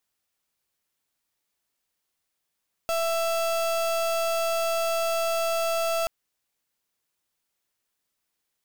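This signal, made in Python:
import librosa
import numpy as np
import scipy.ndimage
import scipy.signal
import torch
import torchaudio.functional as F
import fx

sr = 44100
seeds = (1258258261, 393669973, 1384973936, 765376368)

y = fx.pulse(sr, length_s=3.18, hz=664.0, level_db=-25.5, duty_pct=35)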